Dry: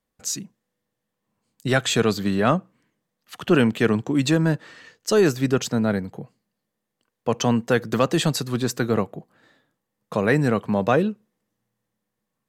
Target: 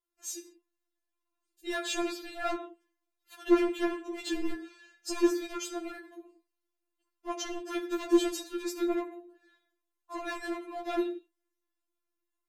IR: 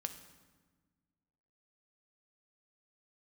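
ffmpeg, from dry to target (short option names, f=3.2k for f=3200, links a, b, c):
-filter_complex "[1:a]atrim=start_sample=2205,afade=t=out:st=0.38:d=0.01,atrim=end_sample=17199,asetrate=79380,aresample=44100[a];[0:a][a]afir=irnorm=-1:irlink=0,asoftclip=type=hard:threshold=-21dB,afftfilt=real='re*4*eq(mod(b,16),0)':imag='im*4*eq(mod(b,16),0)':win_size=2048:overlap=0.75"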